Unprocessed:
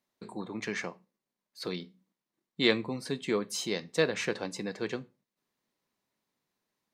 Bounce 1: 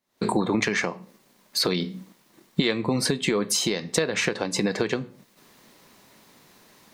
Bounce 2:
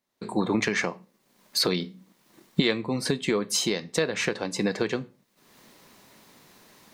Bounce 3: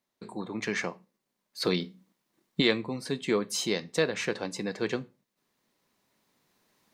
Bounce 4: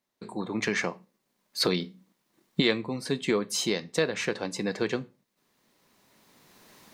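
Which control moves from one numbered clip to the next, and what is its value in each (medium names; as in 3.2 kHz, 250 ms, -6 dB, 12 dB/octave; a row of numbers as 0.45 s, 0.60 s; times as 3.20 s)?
recorder AGC, rising by: 88 dB/s, 36 dB/s, 5.2 dB/s, 13 dB/s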